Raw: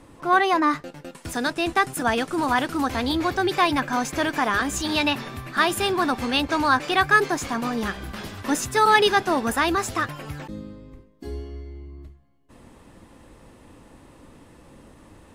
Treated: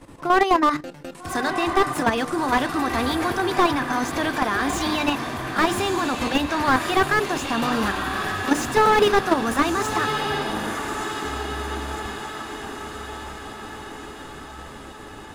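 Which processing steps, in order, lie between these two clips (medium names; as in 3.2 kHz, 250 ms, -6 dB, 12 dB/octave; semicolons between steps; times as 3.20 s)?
hum notches 60/120/180/240/300/360/420/480 Hz; level held to a coarse grid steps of 10 dB; on a send: echo that smears into a reverb 1223 ms, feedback 62%, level -9.5 dB; on the sum: slew-rate limiter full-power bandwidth 100 Hz; trim +6.5 dB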